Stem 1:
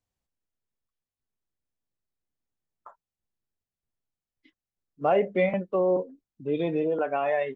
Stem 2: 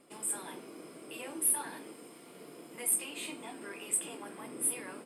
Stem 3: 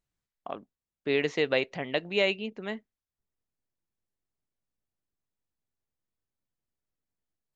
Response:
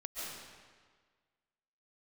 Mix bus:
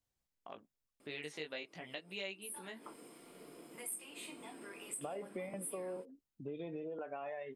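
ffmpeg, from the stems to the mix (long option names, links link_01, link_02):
-filter_complex "[0:a]acompressor=threshold=-28dB:ratio=6,volume=-3.5dB[link_01];[1:a]adelay=1000,volume=-4.5dB[link_02];[2:a]highshelf=frequency=2500:gain=10,flanger=delay=15.5:depth=4.6:speed=0.43,volume=-8.5dB,asplit=2[link_03][link_04];[link_04]apad=whole_len=266898[link_05];[link_02][link_05]sidechaincompress=threshold=-53dB:ratio=8:attack=11:release=137[link_06];[link_01][link_06][link_03]amix=inputs=3:normalize=0,acompressor=threshold=-47dB:ratio=2"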